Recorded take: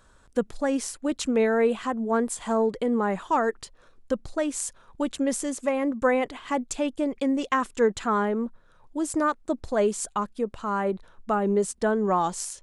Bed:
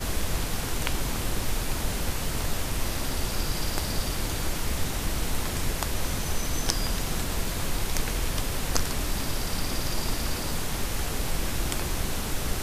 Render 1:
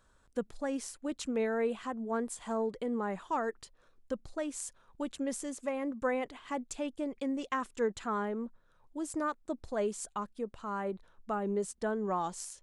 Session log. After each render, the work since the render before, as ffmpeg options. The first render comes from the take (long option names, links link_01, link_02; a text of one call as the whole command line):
ffmpeg -i in.wav -af "volume=-9.5dB" out.wav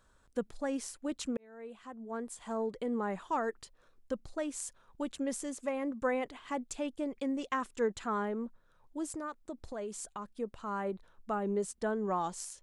ffmpeg -i in.wav -filter_complex "[0:a]asettb=1/sr,asplit=3[link_01][link_02][link_03];[link_01]atrim=end=9.154[link_04];[link_02]atrim=start=9.15:end=10.3,asetpts=PTS-STARTPTS,afade=type=in:duration=0.004:curve=qsin,afade=type=out:start_time=1.146:duration=0.004:curve=qsin,acompressor=threshold=-38dB:ratio=3:attack=3.2:release=140:knee=1:detection=peak[link_05];[link_03]atrim=start=10.296[link_06];[link_04][link_05]acrossfade=duration=0.004:curve1=hsin:curve2=qsin[link_07];[link_07][link_06]acrossfade=duration=0.004:curve1=qsin:curve2=hsin,asplit=2[link_08][link_09];[link_08]atrim=end=1.37,asetpts=PTS-STARTPTS,afade=type=out:start_time=1.366:duration=0.004:curve=hsin[link_10];[link_09]atrim=start=1.37,asetpts=PTS-STARTPTS,afade=type=in:duration=1.54[link_11];[link_10][link_11]concat=n=2:v=0:a=1" out.wav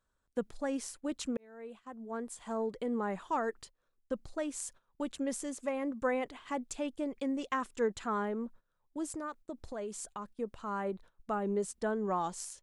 ffmpeg -i in.wav -af "agate=range=-14dB:threshold=-52dB:ratio=16:detection=peak" out.wav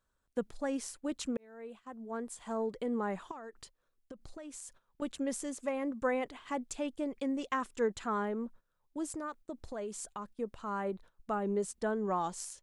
ffmpeg -i in.wav -filter_complex "[0:a]asettb=1/sr,asplit=3[link_01][link_02][link_03];[link_01]atrim=end=3.314[link_04];[link_02]atrim=start=3.31:end=5.02,asetpts=PTS-STARTPTS,afade=type=in:duration=0.004:curve=qsin,afade=type=out:start_time=1.706:duration=0.004:curve=qsin,acompressor=threshold=-42dB:ratio=16:attack=3.2:release=140:knee=1:detection=peak[link_05];[link_03]atrim=start=5.016[link_06];[link_04][link_05]acrossfade=duration=0.004:curve1=hsin:curve2=qsin[link_07];[link_07][link_06]acrossfade=duration=0.004:curve1=qsin:curve2=hsin" out.wav